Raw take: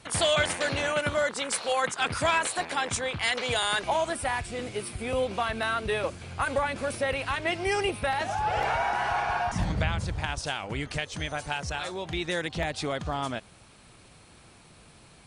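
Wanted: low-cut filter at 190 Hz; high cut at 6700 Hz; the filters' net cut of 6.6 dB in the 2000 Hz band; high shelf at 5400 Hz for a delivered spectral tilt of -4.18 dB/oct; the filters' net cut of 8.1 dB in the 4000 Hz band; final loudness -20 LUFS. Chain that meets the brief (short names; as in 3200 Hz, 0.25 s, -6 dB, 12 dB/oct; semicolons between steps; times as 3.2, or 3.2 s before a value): HPF 190 Hz; LPF 6700 Hz; bell 2000 Hz -7 dB; bell 4000 Hz -5.5 dB; high shelf 5400 Hz -5.5 dB; gain +12 dB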